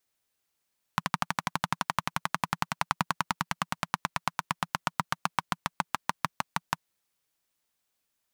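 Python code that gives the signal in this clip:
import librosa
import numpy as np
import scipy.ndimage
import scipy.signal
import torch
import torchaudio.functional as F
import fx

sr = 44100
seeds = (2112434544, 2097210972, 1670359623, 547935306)

y = fx.engine_single_rev(sr, seeds[0], length_s=5.84, rpm=1500, resonances_hz=(170.0, 1000.0), end_rpm=700)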